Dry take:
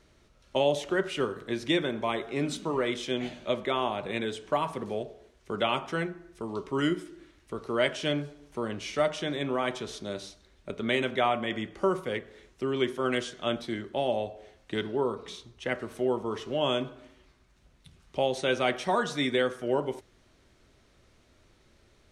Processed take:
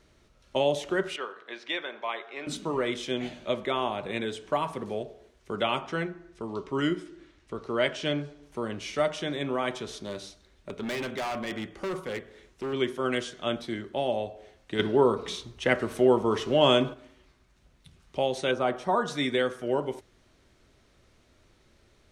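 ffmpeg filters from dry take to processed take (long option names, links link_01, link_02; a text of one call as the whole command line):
ffmpeg -i in.wav -filter_complex "[0:a]asettb=1/sr,asplit=3[link_01][link_02][link_03];[link_01]atrim=end=1.164[link_04];[link_02]atrim=start=1.16:end=2.47,asetpts=PTS-STARTPTS,afade=type=in:duration=0.004:curve=qsin,afade=type=out:start_time=1.306:duration=0.004:curve=qsin,highpass=720,lowpass=3700[link_05];[link_03]atrim=start=2.466[link_06];[link_04][link_05]acrossfade=duration=0.004:curve1=hsin:curve2=qsin[link_07];[link_07][link_06]acrossfade=duration=0.004:curve1=qsin:curve2=hsin,asettb=1/sr,asplit=3[link_08][link_09][link_10];[link_08]atrim=end=5.814[link_11];[link_09]atrim=start=5.81:end=8.43,asetpts=PTS-STARTPTS,afade=type=in:duration=0.004:curve=qsin,afade=type=out:start_time=2.616:duration=0.004:curve=qsin,lowpass=7300[link_12];[link_10]atrim=start=8.426[link_13];[link_11][link_12]acrossfade=duration=0.004:curve1=hsin:curve2=qsin[link_14];[link_14][link_13]acrossfade=duration=0.004:curve1=qsin:curve2=hsin,asettb=1/sr,asplit=3[link_15][link_16][link_17];[link_15]atrim=end=9.904[link_18];[link_16]atrim=start=9.9:end=12.73,asetpts=PTS-STARTPTS,afade=type=in:duration=0.004:curve=qsin,afade=type=out:start_time=2.826:duration=0.004:curve=qsin,volume=29dB,asoftclip=hard,volume=-29dB[link_19];[link_17]atrim=start=12.726[link_20];[link_18][link_19]acrossfade=duration=0.004:curve1=hsin:curve2=qsin[link_21];[link_21][link_20]acrossfade=duration=0.004:curve1=qsin:curve2=hsin,asettb=1/sr,asplit=3[link_22][link_23][link_24];[link_22]atrim=end=14.794[link_25];[link_23]atrim=start=14.79:end=16.94,asetpts=PTS-STARTPTS,afade=type=in:duration=0.004:curve=qsin,afade=type=out:start_time=2.146:duration=0.004:curve=qsin,acontrast=81[link_26];[link_24]atrim=start=16.936[link_27];[link_25][link_26]acrossfade=duration=0.004:curve1=hsin:curve2=qsin[link_28];[link_28][link_27]acrossfade=duration=0.004:curve1=qsin:curve2=hsin,asettb=1/sr,asplit=3[link_29][link_30][link_31];[link_29]atrim=end=18.514[link_32];[link_30]atrim=start=18.51:end=19.08,asetpts=PTS-STARTPTS,afade=type=in:duration=0.004:curve=qsin,afade=type=out:start_time=0.566:duration=0.004:curve=qsin,highshelf=frequency=1600:width_type=q:width=1.5:gain=-8[link_33];[link_31]atrim=start=19.076[link_34];[link_32][link_33]acrossfade=duration=0.004:curve1=hsin:curve2=qsin[link_35];[link_35][link_34]acrossfade=duration=0.004:curve1=qsin:curve2=hsin" out.wav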